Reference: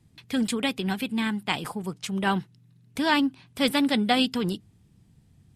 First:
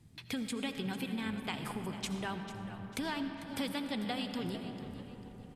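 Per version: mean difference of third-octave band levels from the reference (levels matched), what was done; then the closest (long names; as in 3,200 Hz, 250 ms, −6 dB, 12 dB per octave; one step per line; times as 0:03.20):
11.0 dB: downward compressor 6 to 1, threshold −36 dBFS, peak gain reduction 17.5 dB
echo with shifted repeats 446 ms, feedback 36%, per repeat −88 Hz, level −13.5 dB
comb and all-pass reverb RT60 4.9 s, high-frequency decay 0.35×, pre-delay 40 ms, DRR 6 dB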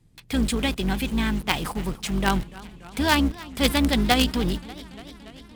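8.5 dB: sub-octave generator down 2 octaves, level −1 dB
in parallel at −8.5 dB: log-companded quantiser 2 bits
on the sum: feedback echo with a swinging delay time 290 ms, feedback 75%, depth 150 cents, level −20 dB
level −1 dB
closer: second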